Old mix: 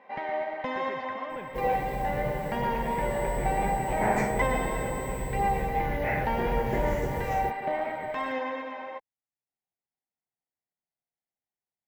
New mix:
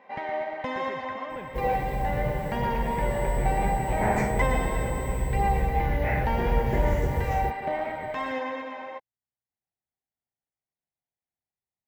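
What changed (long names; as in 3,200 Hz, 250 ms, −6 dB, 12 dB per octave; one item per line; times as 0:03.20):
first sound: remove high-frequency loss of the air 71 metres
master: add parametric band 68 Hz +11 dB 1.5 octaves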